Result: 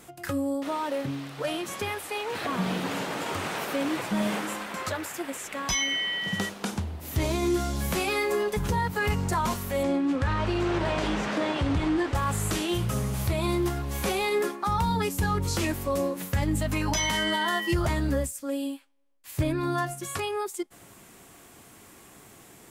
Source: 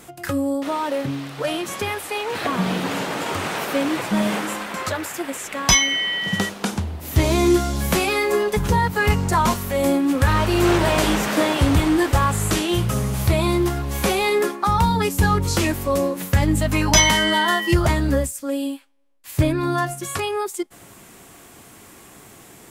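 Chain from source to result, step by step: peak limiter -11.5 dBFS, peak gain reduction 9 dB; 9.83–12.15 s: distance through air 97 m; trim -6 dB

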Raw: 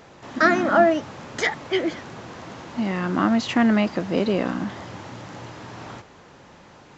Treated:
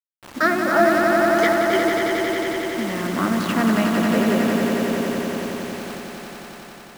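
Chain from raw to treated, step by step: local Wiener filter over 9 samples; bass shelf 100 Hz -8 dB; band-stop 790 Hz, Q 12; bit crusher 6-bit; on a send: echo with a slow build-up 90 ms, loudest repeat 5, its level -6 dB; on the sum: trim -1 dB

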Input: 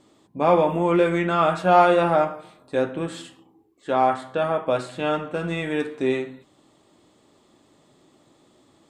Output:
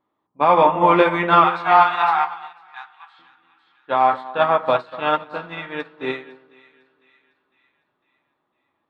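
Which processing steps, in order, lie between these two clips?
level-controlled noise filter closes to 1.8 kHz, open at -17.5 dBFS; graphic EQ 1/2/4/8 kHz +12/+6/+10/-12 dB; peak limiter -5 dBFS, peak gain reduction 8.5 dB; 1.44–3.19 s: brick-wall FIR high-pass 690 Hz; on a send: two-band feedback delay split 1.4 kHz, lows 240 ms, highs 503 ms, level -8 dB; on the sum: upward expansion 2.5:1, over -28 dBFS; trim +3 dB

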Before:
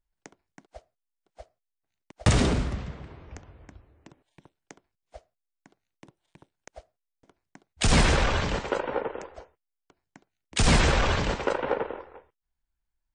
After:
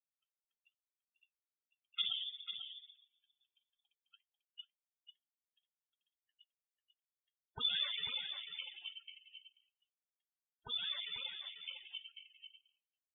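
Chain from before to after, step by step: expander on every frequency bin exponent 2; Doppler pass-by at 4.32 s, 42 m/s, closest 8.1 m; in parallel at 0 dB: compression, threshold -55 dBFS, peak gain reduction 14 dB; on the sum: flange 2 Hz, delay 3.7 ms, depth 8.1 ms, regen -58%; loudest bins only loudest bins 32; on a send: delay 493 ms -8.5 dB; on the sum: frequency inversion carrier 3.5 kHz; trim +11.5 dB

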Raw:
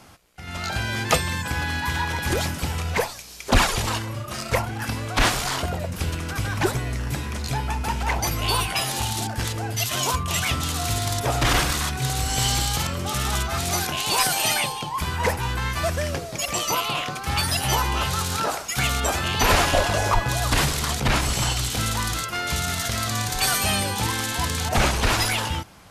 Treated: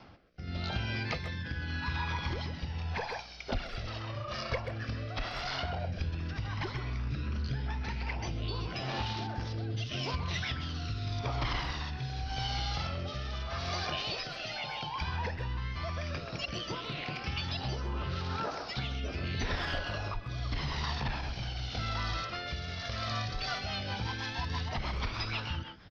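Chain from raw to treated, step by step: steep low-pass 5.5 kHz 72 dB/octave; speakerphone echo 130 ms, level -7 dB; phaser 0.11 Hz, delay 1.8 ms, feedback 43%; compression 6:1, threshold -24 dBFS, peak gain reduction 15 dB; rotary cabinet horn 0.85 Hz, later 6.3 Hz, at 22.99 s; trim -5.5 dB

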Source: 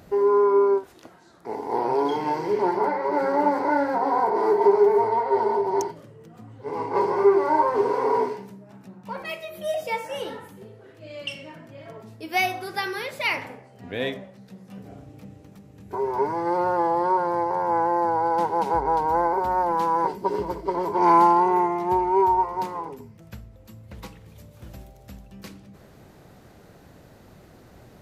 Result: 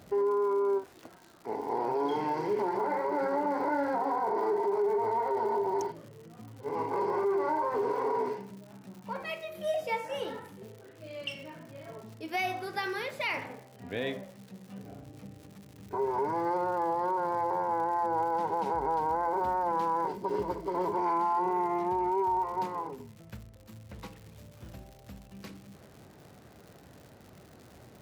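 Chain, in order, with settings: high-pass 62 Hz; treble shelf 5 kHz -6 dB; de-hum 172.2 Hz, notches 3; peak limiter -18.5 dBFS, peak gain reduction 11.5 dB; crackle 170 per s -40 dBFS; trim -3.5 dB

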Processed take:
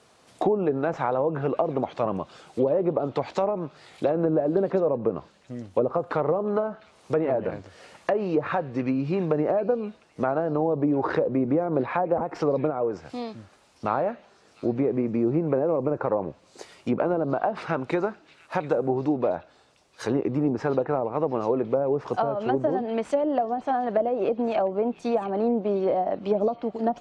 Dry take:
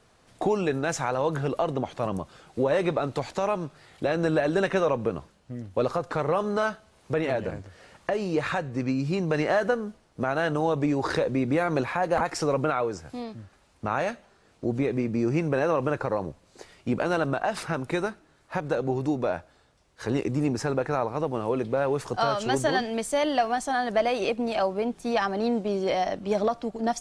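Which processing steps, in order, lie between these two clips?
tracing distortion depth 0.029 ms; high-pass 250 Hz 6 dB/octave; peaking EQ 1.7 kHz -3.5 dB 0.64 oct; low-pass that closes with the level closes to 560 Hz, closed at -22 dBFS; repeats whose band climbs or falls 706 ms, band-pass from 3.1 kHz, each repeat 0.7 oct, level -11 dB; trim +4.5 dB

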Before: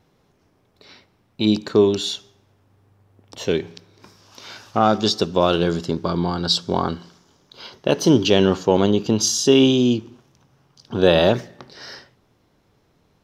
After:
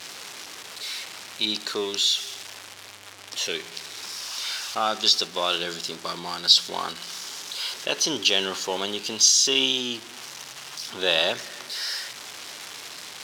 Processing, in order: jump at every zero crossing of -28.5 dBFS; band-pass filter 4.7 kHz, Q 0.63; trim +3 dB

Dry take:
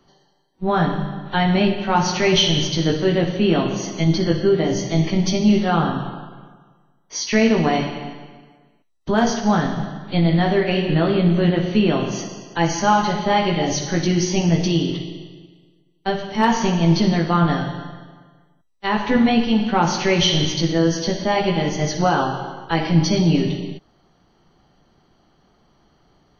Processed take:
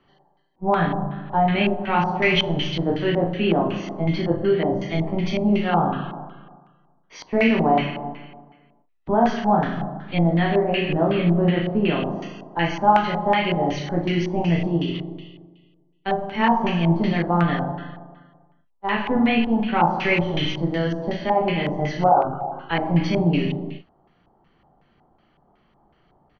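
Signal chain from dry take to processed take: 22.09–22.52 s: resonances exaggerated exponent 3; early reflections 35 ms -5 dB, 62 ms -16.5 dB; LFO low-pass square 2.7 Hz 850–2500 Hz; trim -5 dB

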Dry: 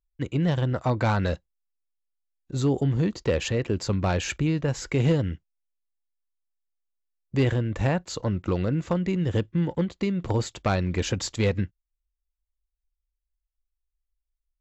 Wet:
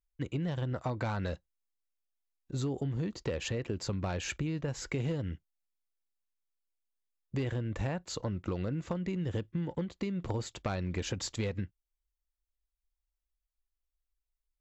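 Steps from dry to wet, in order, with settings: compression, threshold -26 dBFS, peak gain reduction 8 dB; trim -4.5 dB

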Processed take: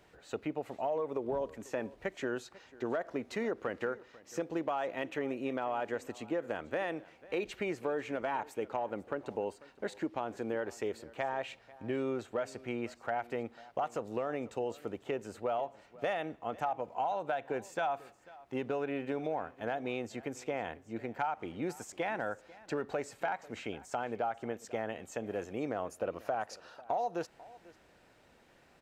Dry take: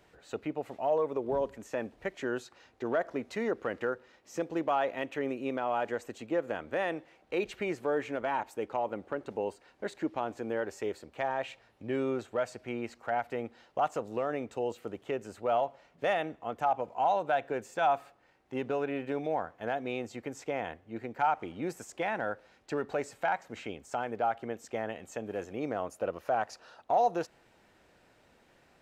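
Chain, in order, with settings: compression, threshold -30 dBFS, peak gain reduction 8.5 dB; delay 494 ms -20.5 dB

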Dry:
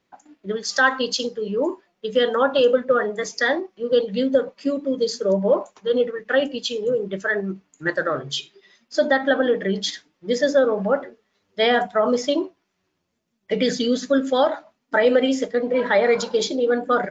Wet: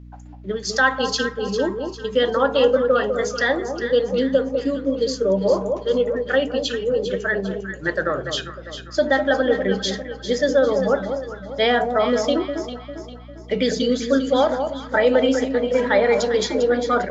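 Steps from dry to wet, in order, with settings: echo whose repeats swap between lows and highs 200 ms, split 1.1 kHz, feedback 64%, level -6 dB; hum 60 Hz, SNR 20 dB

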